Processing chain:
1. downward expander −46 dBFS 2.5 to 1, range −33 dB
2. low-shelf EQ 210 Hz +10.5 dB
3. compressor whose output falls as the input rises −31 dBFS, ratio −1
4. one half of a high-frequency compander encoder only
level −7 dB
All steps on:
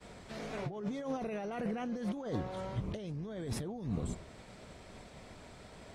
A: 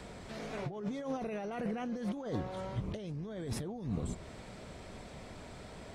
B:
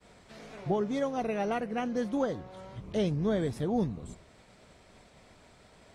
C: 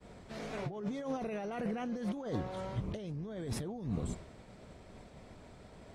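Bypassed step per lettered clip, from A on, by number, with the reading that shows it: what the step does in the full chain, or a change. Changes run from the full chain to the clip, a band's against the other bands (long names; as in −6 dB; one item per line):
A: 1, change in momentary loudness spread −4 LU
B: 3, 8 kHz band −6.0 dB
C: 4, change in momentary loudness spread +2 LU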